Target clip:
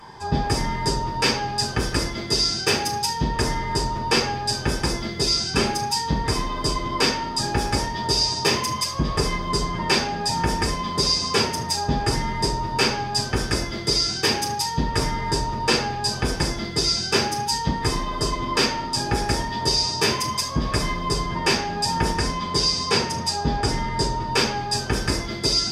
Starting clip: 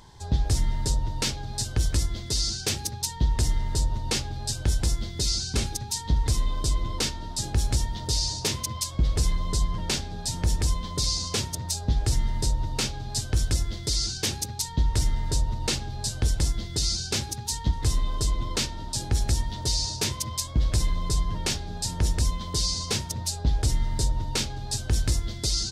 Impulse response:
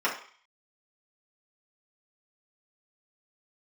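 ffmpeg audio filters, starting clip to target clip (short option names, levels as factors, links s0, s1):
-filter_complex "[0:a]asettb=1/sr,asplit=3[s0][s1][s2];[s0]atrim=end=22.124[s3];[s1]atrim=start=22.12:end=24.31,asetpts=PTS-STARTPTS,afade=t=in:d=0.004:c=qsin,afade=t=out:st=2.186:d=0.004:c=qsin,lowpass=10000[s4];[s2]atrim=start=24.306[s5];[s3][s4]acrossfade=d=0.004:c1=hsin:c2=qsin[s6];[s6][s5]acrossfade=d=0.004:c1=qsin:c2=hsin[s7];[1:a]atrim=start_sample=2205,asetrate=39690,aresample=44100[s8];[s7][s8]afir=irnorm=-1:irlink=0"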